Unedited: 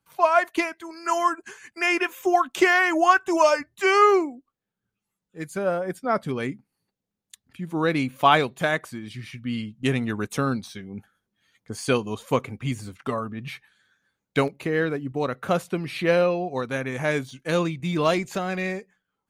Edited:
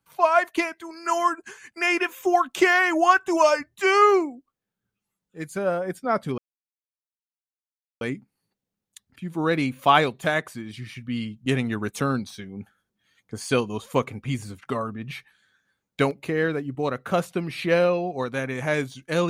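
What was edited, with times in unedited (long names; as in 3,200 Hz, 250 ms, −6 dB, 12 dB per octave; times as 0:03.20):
0:06.38: splice in silence 1.63 s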